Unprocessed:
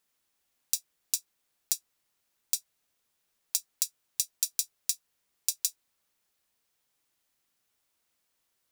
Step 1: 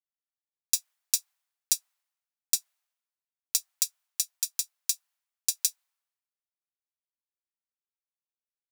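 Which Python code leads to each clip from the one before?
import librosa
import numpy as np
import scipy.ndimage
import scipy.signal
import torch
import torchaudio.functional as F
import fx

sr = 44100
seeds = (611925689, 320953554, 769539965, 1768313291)

y = scipy.signal.sosfilt(scipy.signal.butter(4, 700.0, 'highpass', fs=sr, output='sos'), x)
y = fx.rider(y, sr, range_db=10, speed_s=0.5)
y = fx.band_widen(y, sr, depth_pct=100)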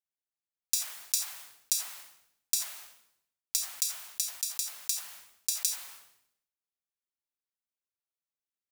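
y = fx.sustainer(x, sr, db_per_s=85.0)
y = y * 10.0 ** (-4.0 / 20.0)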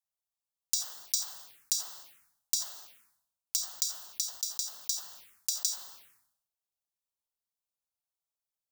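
y = fx.env_phaser(x, sr, low_hz=320.0, high_hz=2300.0, full_db=-37.5)
y = y * 10.0 ** (1.5 / 20.0)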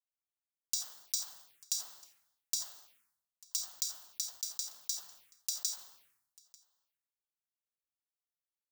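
y = x + 10.0 ** (-22.5 / 20.0) * np.pad(x, (int(893 * sr / 1000.0), 0))[:len(x)]
y = fx.leveller(y, sr, passes=1)
y = y * 10.0 ** (-8.0 / 20.0)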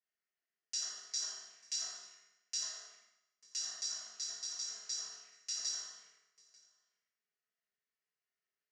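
y = fx.cabinet(x, sr, low_hz=170.0, low_slope=24, high_hz=5600.0, hz=(280.0, 530.0, 930.0, 1800.0, 3700.0), db=(-6, -5, -9, 10, -9))
y = fx.rev_fdn(y, sr, rt60_s=0.84, lf_ratio=0.75, hf_ratio=0.95, size_ms=14.0, drr_db=-8.5)
y = y * 10.0 ** (-4.5 / 20.0)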